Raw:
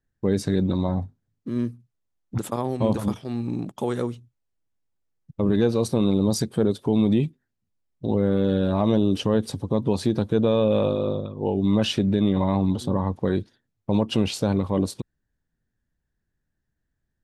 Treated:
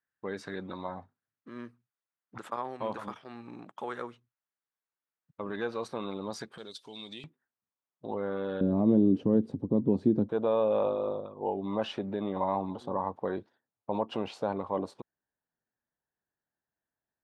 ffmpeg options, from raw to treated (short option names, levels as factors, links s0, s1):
-af "asetnsamples=n=441:p=0,asendcmd='6.58 bandpass f 4700;7.24 bandpass f 1100;8.61 bandpass f 270;10.29 bandpass f 860',bandpass=f=1400:t=q:w=1.4:csg=0"